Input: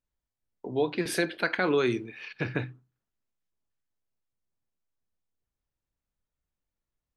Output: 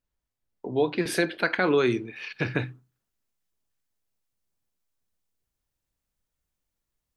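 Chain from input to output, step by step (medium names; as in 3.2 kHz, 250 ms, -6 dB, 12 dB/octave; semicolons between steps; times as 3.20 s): treble shelf 4 kHz -2.5 dB, from 2.16 s +5.5 dB; trim +3 dB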